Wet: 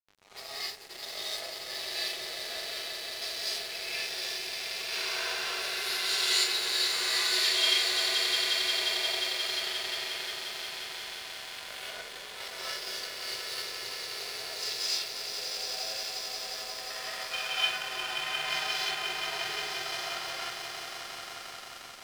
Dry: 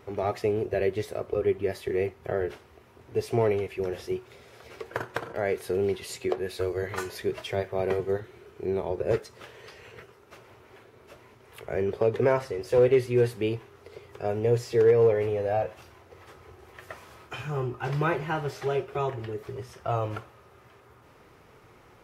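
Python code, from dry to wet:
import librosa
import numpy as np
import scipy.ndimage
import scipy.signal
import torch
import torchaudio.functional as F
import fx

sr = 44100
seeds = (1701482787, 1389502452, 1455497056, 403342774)

y = fx.over_compress(x, sr, threshold_db=-35.0, ratio=-1.0)
y = scipy.signal.sosfilt(scipy.signal.butter(2, 1100.0, 'highpass', fs=sr, output='sos'), y)
y = fx.high_shelf(y, sr, hz=2300.0, db=-2.5)
y = fx.echo_swell(y, sr, ms=177, loudest=5, wet_db=-7.0)
y = fx.rev_gated(y, sr, seeds[0], gate_ms=330, shape='rising', drr_db=-5.0)
y = fx.hpss(y, sr, part='percussive', gain_db=-15)
y = fx.peak_eq(y, sr, hz=4100.0, db=13.5, octaves=1.1)
y = fx.room_flutter(y, sr, wall_m=11.5, rt60_s=0.77, at=(4.91, 6.44), fade=0.02)
y = np.sign(y) * np.maximum(np.abs(y) - 10.0 ** (-41.0 / 20.0), 0.0)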